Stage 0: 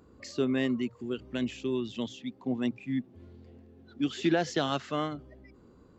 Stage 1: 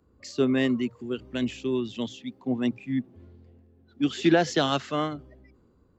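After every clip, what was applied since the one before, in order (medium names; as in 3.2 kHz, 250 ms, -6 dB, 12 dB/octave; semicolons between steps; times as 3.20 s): three bands expanded up and down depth 40%; trim +4 dB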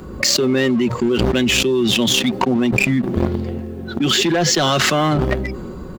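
comb 5.4 ms, depth 47%; waveshaping leveller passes 2; level flattener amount 100%; trim -5 dB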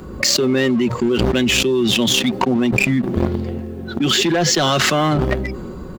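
no audible change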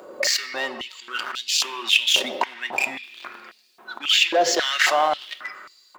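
reverberation RT60 1.9 s, pre-delay 3 ms, DRR 8.5 dB; step-sequenced high-pass 3.7 Hz 570–4500 Hz; trim -6.5 dB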